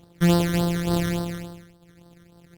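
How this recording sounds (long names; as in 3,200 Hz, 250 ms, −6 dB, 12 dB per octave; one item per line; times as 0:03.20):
a buzz of ramps at a fixed pitch in blocks of 256 samples
phaser sweep stages 12, 3.5 Hz, lowest notch 800–2,400 Hz
Opus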